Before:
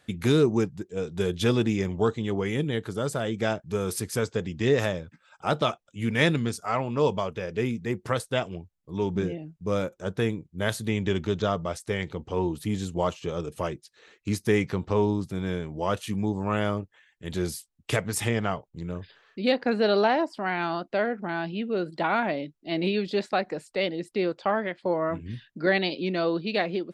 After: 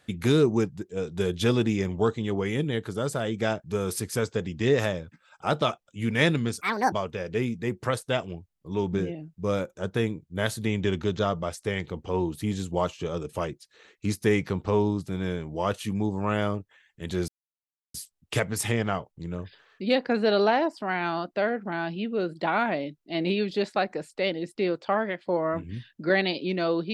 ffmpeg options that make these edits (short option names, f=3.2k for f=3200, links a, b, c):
-filter_complex "[0:a]asplit=4[a][b][c][d];[a]atrim=end=6.614[e];[b]atrim=start=6.61:end=7.15,asetpts=PTS-STARTPTS,asetrate=76293,aresample=44100,atrim=end_sample=13765,asetpts=PTS-STARTPTS[f];[c]atrim=start=7.146:end=17.51,asetpts=PTS-STARTPTS,afade=t=out:st=10.36:d=0.004:c=hsin,apad=pad_dur=0.66[g];[d]atrim=start=17.51,asetpts=PTS-STARTPTS,afade=t=in:d=0.004:c=hsin[h];[e][f]acrossfade=d=0.004:c1=hsin:c2=hsin[i];[g][h]concat=n=2:v=0:a=1[j];[i][j]acrossfade=d=0.004:c1=hsin:c2=hsin"